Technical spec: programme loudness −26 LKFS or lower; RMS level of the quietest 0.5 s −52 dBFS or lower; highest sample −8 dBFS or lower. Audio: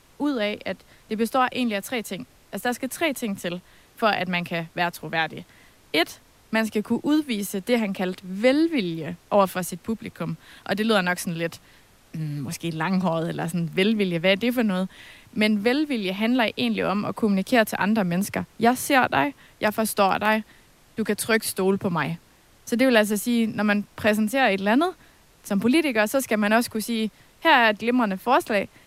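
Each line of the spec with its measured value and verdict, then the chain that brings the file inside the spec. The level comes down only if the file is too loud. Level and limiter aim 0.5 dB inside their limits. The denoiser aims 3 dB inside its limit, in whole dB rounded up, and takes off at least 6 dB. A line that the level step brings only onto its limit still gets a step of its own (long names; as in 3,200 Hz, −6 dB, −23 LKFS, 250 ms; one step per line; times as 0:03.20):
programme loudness −23.5 LKFS: out of spec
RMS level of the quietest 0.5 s −55 dBFS: in spec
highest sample −5.0 dBFS: out of spec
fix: level −3 dB
brickwall limiter −8.5 dBFS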